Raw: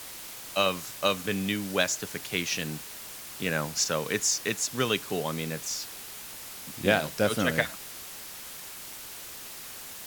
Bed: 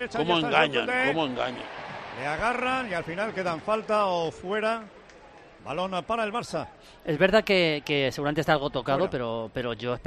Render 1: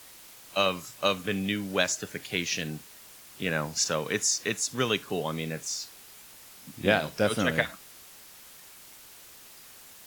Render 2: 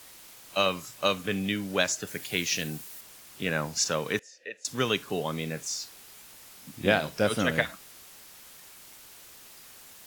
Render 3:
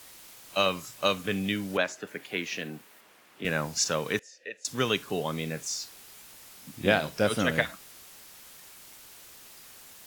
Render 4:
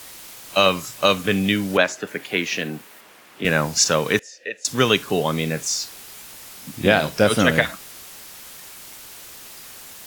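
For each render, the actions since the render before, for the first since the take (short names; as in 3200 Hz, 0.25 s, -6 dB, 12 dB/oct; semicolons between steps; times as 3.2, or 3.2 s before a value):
noise print and reduce 8 dB
2.07–3.01 high shelf 8200 Hz +9.5 dB; 4.19–4.65 vowel filter e
1.77–3.45 three-band isolator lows -15 dB, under 190 Hz, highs -14 dB, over 2900 Hz
gain +9.5 dB; limiter -2 dBFS, peak gain reduction 3 dB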